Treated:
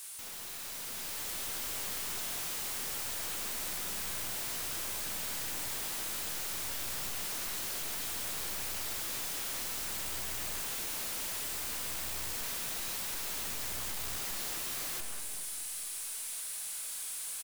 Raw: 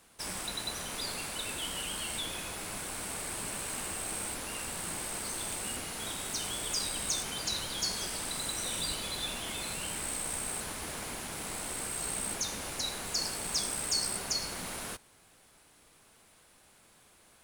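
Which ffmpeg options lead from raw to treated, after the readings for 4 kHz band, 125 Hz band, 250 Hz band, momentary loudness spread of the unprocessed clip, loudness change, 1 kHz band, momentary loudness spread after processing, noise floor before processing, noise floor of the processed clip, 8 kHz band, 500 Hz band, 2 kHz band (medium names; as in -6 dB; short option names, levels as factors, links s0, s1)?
-4.5 dB, -5.5 dB, -7.0 dB, 6 LU, -1.0 dB, -3.5 dB, 2 LU, -62 dBFS, -41 dBFS, -2.5 dB, -5.0 dB, -1.5 dB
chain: -filter_complex "[0:a]aderivative,asplit=2[s0][s1];[s1]adelay=37,volume=0.376[s2];[s0][s2]amix=inputs=2:normalize=0,aeval=exprs='(tanh(100*val(0)+0.35)-tanh(0.35))/100':c=same,asplit=2[s3][s4];[s4]adelay=232,lowpass=f=1000:p=1,volume=0.316,asplit=2[s5][s6];[s6]adelay=232,lowpass=f=1000:p=1,volume=0.52,asplit=2[s7][s8];[s8]adelay=232,lowpass=f=1000:p=1,volume=0.52,asplit=2[s9][s10];[s10]adelay=232,lowpass=f=1000:p=1,volume=0.52,asplit=2[s11][s12];[s12]adelay=232,lowpass=f=1000:p=1,volume=0.52,asplit=2[s13][s14];[s14]adelay=232,lowpass=f=1000:p=1,volume=0.52[s15];[s5][s7][s9][s11][s13][s15]amix=inputs=6:normalize=0[s16];[s3][s16]amix=inputs=2:normalize=0,aeval=exprs='0.0158*sin(PI/2*10*val(0)/0.0158)':c=same,dynaudnorm=f=230:g=9:m=1.88,volume=0.631"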